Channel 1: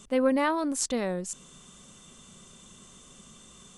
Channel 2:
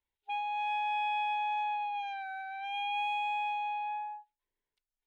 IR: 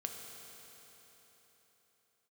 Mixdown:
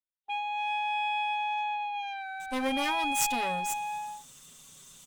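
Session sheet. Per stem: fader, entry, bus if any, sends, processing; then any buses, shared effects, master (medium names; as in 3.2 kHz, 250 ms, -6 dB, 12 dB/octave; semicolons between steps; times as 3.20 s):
-5.0 dB, 2.40 s, send -23.5 dB, comb filter that takes the minimum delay 7.2 ms; peaking EQ 390 Hz -5.5 dB 1.1 oct
+0.5 dB, 0.00 s, no send, none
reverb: on, RT60 4.1 s, pre-delay 3 ms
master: gate with hold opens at -51 dBFS; treble shelf 3 kHz +9 dB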